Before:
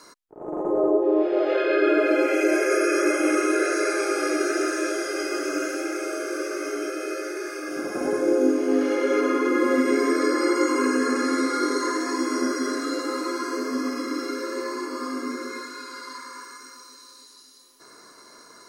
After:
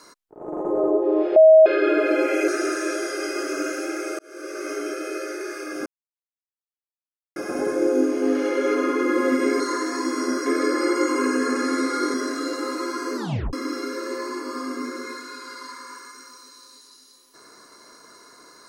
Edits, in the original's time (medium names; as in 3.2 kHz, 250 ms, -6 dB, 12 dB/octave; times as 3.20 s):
1.36–1.66 s: bleep 635 Hz -7 dBFS
2.48–4.44 s: delete
6.15–6.66 s: fade in
7.82 s: insert silence 1.50 s
11.74–12.60 s: move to 10.06 s
13.62 s: tape stop 0.37 s